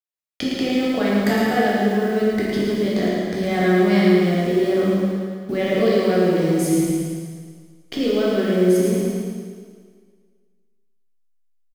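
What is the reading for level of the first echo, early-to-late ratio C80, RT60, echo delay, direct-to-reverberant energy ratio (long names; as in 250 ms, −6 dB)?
−4.5 dB, −1.5 dB, 1.8 s, 110 ms, −7.0 dB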